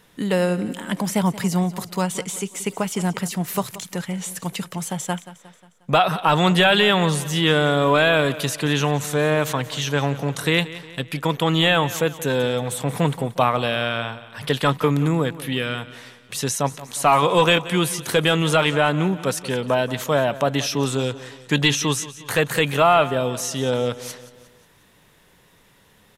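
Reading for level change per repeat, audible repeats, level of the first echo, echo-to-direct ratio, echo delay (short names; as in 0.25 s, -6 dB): -6.0 dB, 4, -16.5 dB, -15.5 dB, 0.179 s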